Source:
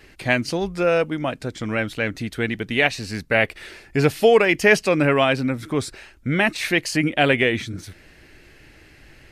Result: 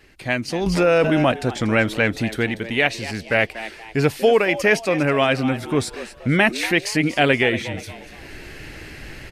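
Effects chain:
automatic gain control gain up to 15 dB
echo with shifted repeats 238 ms, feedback 39%, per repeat +110 Hz, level −14 dB
0:00.66–0:01.32: envelope flattener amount 70%
level −3.5 dB

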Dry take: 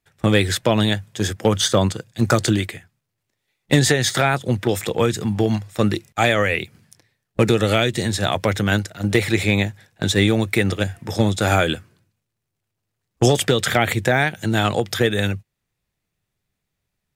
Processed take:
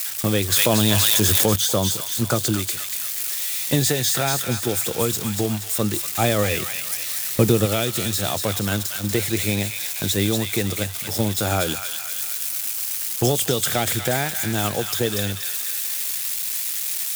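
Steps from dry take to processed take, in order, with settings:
spike at every zero crossing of −14 dBFS
0:06.04–0:07.66: low-shelf EQ 480 Hz +6 dB
on a send: delay with a high-pass on its return 238 ms, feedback 49%, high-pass 1,500 Hz, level −4 dB
on the sum: dynamic equaliser 1,900 Hz, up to −6 dB, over −34 dBFS, Q 2.1
0:00.52–0:01.56: envelope flattener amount 100%
level −4.5 dB

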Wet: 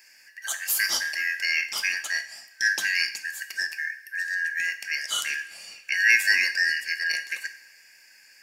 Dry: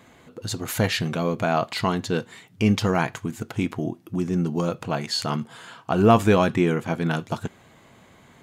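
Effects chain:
band-splitting scrambler in four parts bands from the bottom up 3142
RIAA equalisation recording
coupled-rooms reverb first 0.57 s, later 2.3 s, from −18 dB, DRR 8 dB
level −7 dB

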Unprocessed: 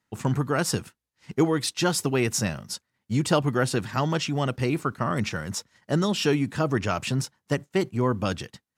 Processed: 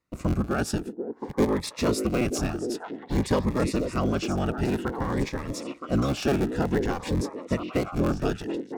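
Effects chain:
sub-harmonics by changed cycles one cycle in 3, inverted
high-shelf EQ 3,000 Hz −8 dB
notch filter 3,100 Hz, Q 14
on a send: echo through a band-pass that steps 486 ms, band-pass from 370 Hz, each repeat 1.4 octaves, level −2.5 dB
on the sum: phaser whose notches keep moving one way rising 0.53 Hz

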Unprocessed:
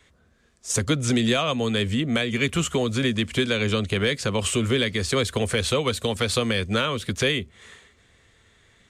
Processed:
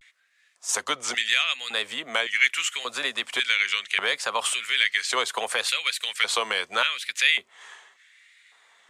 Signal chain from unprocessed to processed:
auto-filter high-pass square 0.88 Hz 860–2,000 Hz
pitch vibrato 0.74 Hz 90 cents

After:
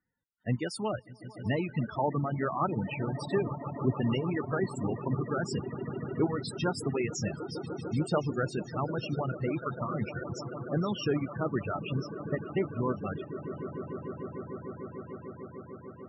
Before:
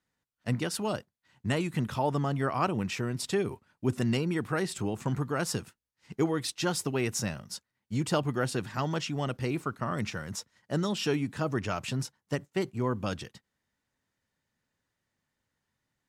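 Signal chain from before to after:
echo that builds up and dies away 149 ms, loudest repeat 8, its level −14 dB
spectral peaks only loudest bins 32
reverb reduction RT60 1.3 s

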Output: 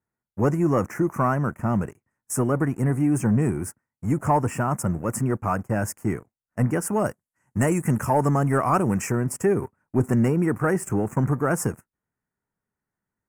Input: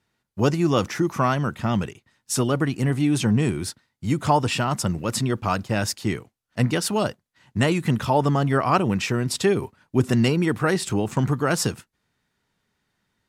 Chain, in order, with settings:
0:07.04–0:09.12: parametric band 8,300 Hz +10 dB 2.3 octaves
leveller curve on the samples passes 2
Butterworth band-reject 3,800 Hz, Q 0.63
level −7.5 dB

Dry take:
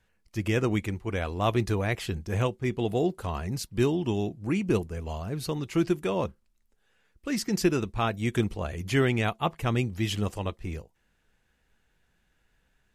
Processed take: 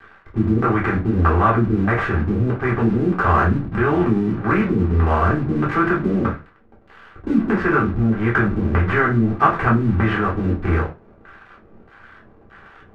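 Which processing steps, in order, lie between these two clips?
compressor on every frequency bin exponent 0.6
low-shelf EQ 260 Hz +11.5 dB
auto-filter low-pass square 1.6 Hz 260–1,500 Hz
dead-zone distortion −39.5 dBFS
brickwall limiter −12 dBFS, peak gain reduction 9 dB
parametric band 1,400 Hz +14 dB 2.7 octaves
convolution reverb, pre-delay 3 ms, DRR −4.5 dB
level −7 dB

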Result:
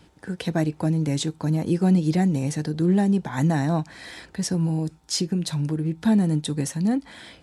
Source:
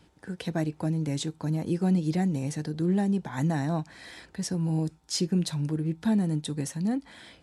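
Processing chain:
0:04.65–0:05.97: downward compressor, threshold −26 dBFS, peak gain reduction 6 dB
level +5.5 dB

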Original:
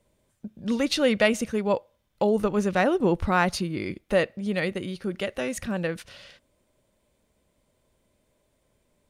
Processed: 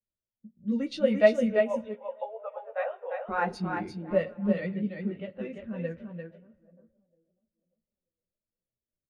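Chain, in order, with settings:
feedback delay that plays each chunk backwards 469 ms, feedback 42%, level −13 dB
0:01.59–0:03.29: Chebyshev band-pass filter 490–3,700 Hz, order 5
low-pass that shuts in the quiet parts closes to 710 Hz, open at −20.5 dBFS
multi-voice chorus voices 6, 0.44 Hz, delay 14 ms, depth 4.9 ms
single-tap delay 345 ms −3.5 dB
spring reverb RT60 1.3 s, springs 31 ms, chirp 35 ms, DRR 15 dB
every bin expanded away from the loudest bin 1.5 to 1

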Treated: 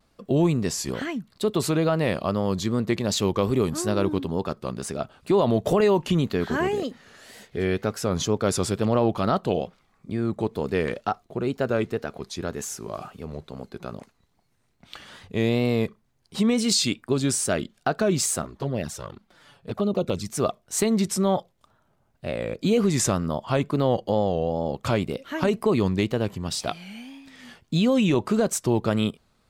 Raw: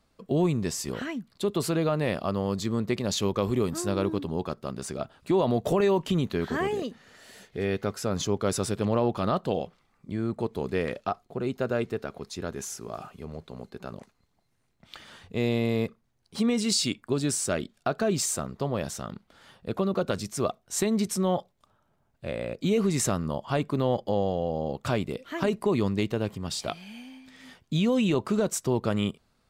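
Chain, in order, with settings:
tape wow and flutter 94 cents
0:18.42–0:20.30: flanger swept by the level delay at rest 8.3 ms, full sweep at −23 dBFS
level +3.5 dB

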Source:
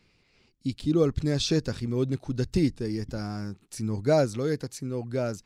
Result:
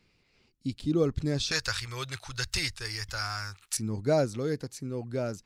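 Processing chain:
0:01.51–0:03.77: drawn EQ curve 100 Hz 0 dB, 230 Hz −23 dB, 1,300 Hz +14 dB
level −3 dB

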